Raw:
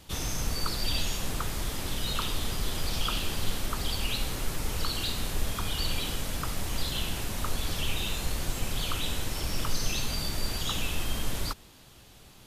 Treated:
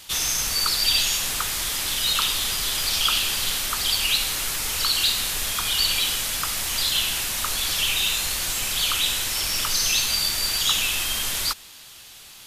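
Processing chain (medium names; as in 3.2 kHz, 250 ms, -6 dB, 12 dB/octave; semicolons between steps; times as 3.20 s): tilt shelf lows -10 dB, about 870 Hz; trim +3.5 dB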